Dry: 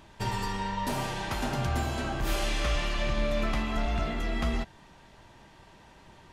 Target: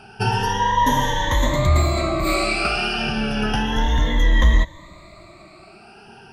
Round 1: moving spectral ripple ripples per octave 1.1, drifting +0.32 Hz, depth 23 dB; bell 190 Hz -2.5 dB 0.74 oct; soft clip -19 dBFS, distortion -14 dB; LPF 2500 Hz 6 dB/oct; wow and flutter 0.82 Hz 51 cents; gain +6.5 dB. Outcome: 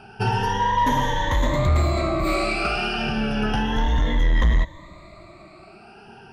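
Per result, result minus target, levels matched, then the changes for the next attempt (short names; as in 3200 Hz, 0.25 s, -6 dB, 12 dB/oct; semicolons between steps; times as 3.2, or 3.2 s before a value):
soft clip: distortion +13 dB; 8000 Hz band -5.5 dB
change: soft clip -10 dBFS, distortion -28 dB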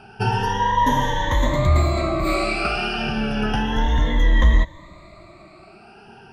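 8000 Hz band -5.5 dB
change: LPF 6800 Hz 6 dB/oct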